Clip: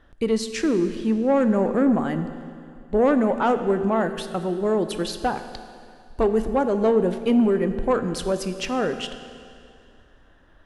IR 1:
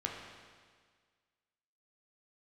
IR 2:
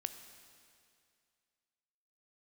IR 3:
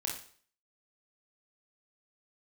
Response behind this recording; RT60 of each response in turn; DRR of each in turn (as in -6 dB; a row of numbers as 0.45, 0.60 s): 2; 1.7, 2.3, 0.50 s; -1.0, 8.5, -1.0 dB